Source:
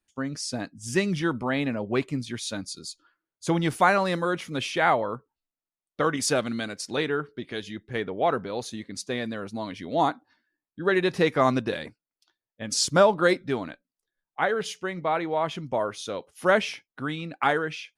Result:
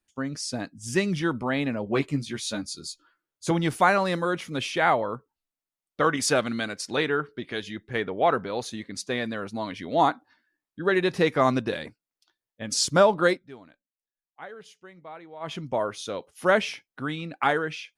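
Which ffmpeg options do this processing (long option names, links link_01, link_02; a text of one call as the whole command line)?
ffmpeg -i in.wav -filter_complex "[0:a]asettb=1/sr,asplit=3[link_01][link_02][link_03];[link_01]atrim=end=1.854[link_04];[link_02]atrim=start=1.85:end=3.51,asetpts=PTS-STARTPTS,afade=type=in:duration=0.004:curve=qsin,afade=type=out:start_time=1.656:duration=0.004:curve=qsin,asplit=2[link_05][link_06];[link_06]adelay=14,volume=-5dB[link_07];[link_05][link_07]amix=inputs=2:normalize=0,atrim=end_sample=73206[link_08];[link_03]atrim=start=3.506[link_09];[link_04][link_08]acrossfade=duration=0.004:curve1=hsin:curve2=qsin[link_10];[link_10][link_09]acrossfade=duration=0.004:curve1=qsin:curve2=hsin,asettb=1/sr,asplit=3[link_11][link_12][link_13];[link_11]atrim=end=6.014[link_14];[link_12]atrim=start=6.01:end=10.82,asetpts=PTS-STARTPTS,afade=type=in:duration=0.004:curve=qsin,afade=type=out:start_time=4.806:duration=0.004:curve=qsin,equalizer=frequency=1500:width_type=o:width=2.5:gain=3.5[link_15];[link_13]atrim=start=10.816[link_16];[link_14][link_15]acrossfade=duration=0.004:curve1=hsin:curve2=qsin[link_17];[link_17][link_16]acrossfade=duration=0.004:curve1=qsin:curve2=hsin,asplit=3[link_18][link_19][link_20];[link_18]atrim=end=13.4,asetpts=PTS-STARTPTS,afade=type=out:start_time=13.28:duration=0.12:silence=0.149624[link_21];[link_19]atrim=start=13.4:end=15.4,asetpts=PTS-STARTPTS,volume=-16.5dB[link_22];[link_20]atrim=start=15.4,asetpts=PTS-STARTPTS,afade=type=in:duration=0.12:silence=0.149624[link_23];[link_21][link_22][link_23]concat=n=3:v=0:a=1" out.wav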